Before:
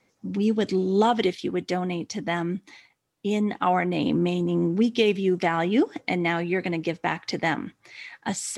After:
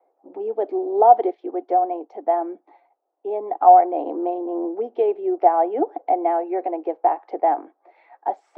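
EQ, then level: steep high-pass 320 Hz 48 dB/oct; synth low-pass 740 Hz, resonance Q 5.9; -1.0 dB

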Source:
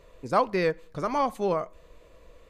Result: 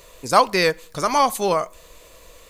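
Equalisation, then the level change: bell 890 Hz +4 dB 1.3 oct; high shelf 2300 Hz +11.5 dB; high shelf 4700 Hz +11 dB; +3.0 dB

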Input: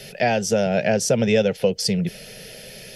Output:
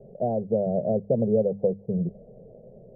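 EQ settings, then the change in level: steep low-pass 680 Hz 36 dB/oct; notches 50/100/150/200 Hz; -3.5 dB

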